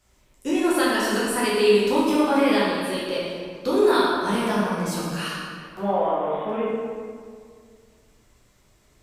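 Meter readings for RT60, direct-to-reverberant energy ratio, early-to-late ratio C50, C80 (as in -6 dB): 2.0 s, -8.5 dB, -2.5 dB, 0.0 dB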